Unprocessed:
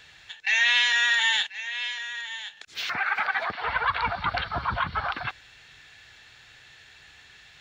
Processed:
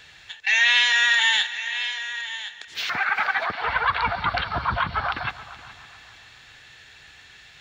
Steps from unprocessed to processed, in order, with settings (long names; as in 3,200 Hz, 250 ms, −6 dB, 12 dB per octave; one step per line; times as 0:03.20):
echo machine with several playback heads 141 ms, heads first and third, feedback 49%, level −18 dB
level +3 dB